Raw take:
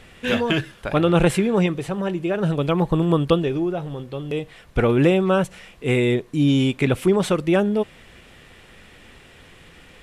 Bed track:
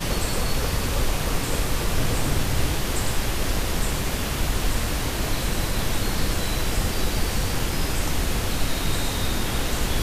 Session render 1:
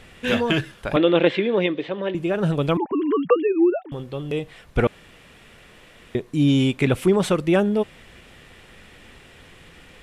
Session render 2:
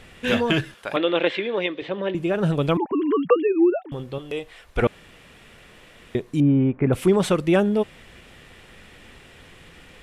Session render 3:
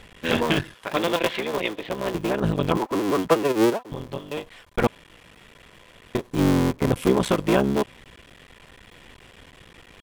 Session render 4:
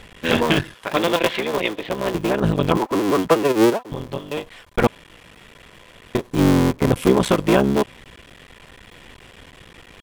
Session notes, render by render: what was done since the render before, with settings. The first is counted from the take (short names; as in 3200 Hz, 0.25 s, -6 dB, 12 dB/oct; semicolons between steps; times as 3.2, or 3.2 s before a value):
0.96–2.15 speaker cabinet 300–3800 Hz, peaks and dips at 300 Hz +7 dB, 540 Hz +4 dB, 780 Hz -6 dB, 1300 Hz -6 dB, 2000 Hz +4 dB, 3500 Hz +7 dB; 2.77–3.92 sine-wave speech; 4.87–6.15 room tone
0.74–1.82 HPF 580 Hz 6 dB/oct; 4.18–4.82 bell 160 Hz -13 dB 1.6 oct; 6.4–6.93 Bessel low-pass 1200 Hz, order 6
cycle switcher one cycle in 3, muted; small resonant body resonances 1000/3300 Hz, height 7 dB
gain +4 dB; limiter -3 dBFS, peak gain reduction 2 dB